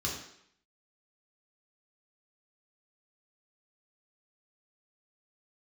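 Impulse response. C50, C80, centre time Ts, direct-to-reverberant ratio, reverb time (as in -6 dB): 4.5 dB, 7.5 dB, 37 ms, -3.0 dB, 0.70 s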